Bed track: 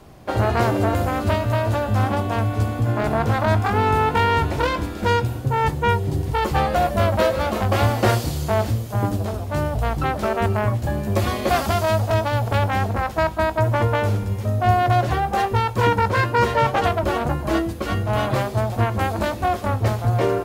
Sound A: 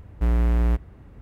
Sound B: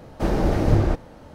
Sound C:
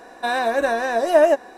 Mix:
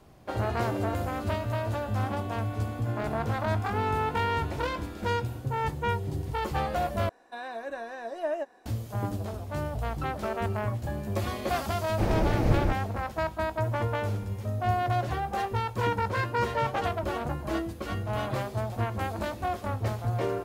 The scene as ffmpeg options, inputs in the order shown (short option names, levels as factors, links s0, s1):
-filter_complex "[0:a]volume=0.335[s0];[3:a]acrossover=split=4700[s1][s2];[s2]acompressor=threshold=0.00447:ratio=4:attack=1:release=60[s3];[s1][s3]amix=inputs=2:normalize=0[s4];[2:a]equalizer=f=2300:t=o:w=0.44:g=5.5[s5];[s0]asplit=2[s6][s7];[s6]atrim=end=7.094[s8];[s4]atrim=end=1.57,asetpts=PTS-STARTPTS,volume=0.15[s9];[s7]atrim=start=8.656[s10];[s5]atrim=end=1.34,asetpts=PTS-STARTPTS,volume=0.531,afade=t=in:d=0.004:c=hsin,afade=t=out:st=1.336:d=0.004:c=hsin,adelay=519498S[s11];[s8][s9]acrossfade=d=0.004:c1=hsin:c2=hsin[s12];[s12][s10]acrossfade=d=0.004:c1=hsin:c2=hsin[s13];[s13][s11]amix=inputs=2:normalize=0"